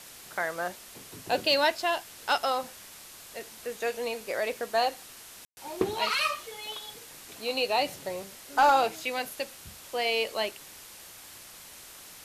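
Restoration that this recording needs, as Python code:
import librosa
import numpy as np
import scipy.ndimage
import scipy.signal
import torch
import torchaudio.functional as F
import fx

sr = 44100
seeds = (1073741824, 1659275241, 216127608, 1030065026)

y = fx.fix_declip(x, sr, threshold_db=-14.5)
y = fx.fix_ambience(y, sr, seeds[0], print_start_s=11.43, print_end_s=11.93, start_s=5.45, end_s=5.57)
y = fx.noise_reduce(y, sr, print_start_s=11.43, print_end_s=11.93, reduce_db=26.0)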